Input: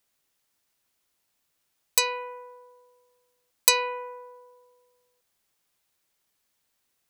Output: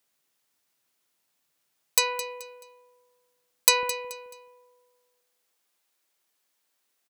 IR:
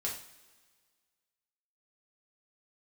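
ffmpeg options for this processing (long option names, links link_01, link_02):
-af "asetnsamples=nb_out_samples=441:pad=0,asendcmd='3.83 highpass f 270',highpass=120,aecho=1:1:215|430|645:0.211|0.0676|0.0216"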